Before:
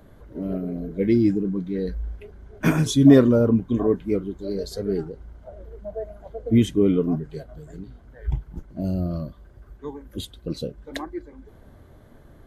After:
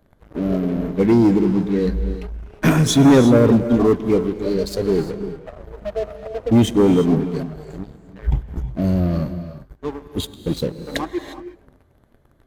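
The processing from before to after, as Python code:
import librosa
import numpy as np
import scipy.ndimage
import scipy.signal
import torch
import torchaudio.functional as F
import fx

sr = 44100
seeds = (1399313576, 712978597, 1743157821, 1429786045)

y = fx.leveller(x, sr, passes=3)
y = fx.rev_gated(y, sr, seeds[0], gate_ms=380, shape='rising', drr_db=10.0)
y = F.gain(torch.from_numpy(y), -4.0).numpy()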